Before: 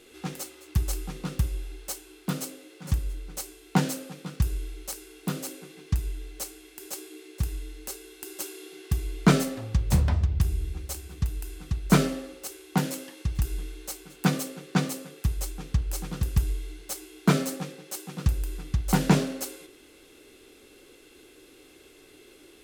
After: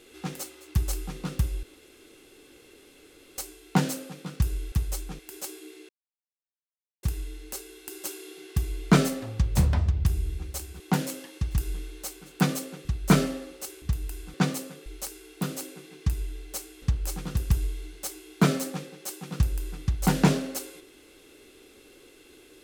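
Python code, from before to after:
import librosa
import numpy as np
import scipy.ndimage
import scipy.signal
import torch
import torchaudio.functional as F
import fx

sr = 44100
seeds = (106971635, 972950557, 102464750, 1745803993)

y = fx.edit(x, sr, fx.room_tone_fill(start_s=1.63, length_s=1.75),
    fx.swap(start_s=4.72, length_s=1.96, other_s=15.21, other_length_s=0.47),
    fx.insert_silence(at_s=7.38, length_s=1.14),
    fx.swap(start_s=11.15, length_s=0.52, other_s=12.64, other_length_s=2.05), tone=tone)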